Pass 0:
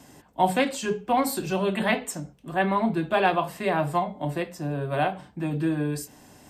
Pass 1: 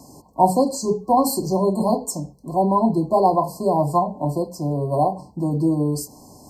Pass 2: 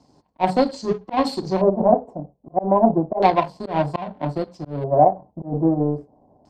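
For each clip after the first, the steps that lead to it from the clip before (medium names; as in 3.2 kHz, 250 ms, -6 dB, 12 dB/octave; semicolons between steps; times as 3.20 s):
FFT band-reject 1.1–4.1 kHz; trim +6 dB
slow attack 111 ms; power-law waveshaper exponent 1.4; LFO low-pass square 0.31 Hz 680–3700 Hz; trim +3 dB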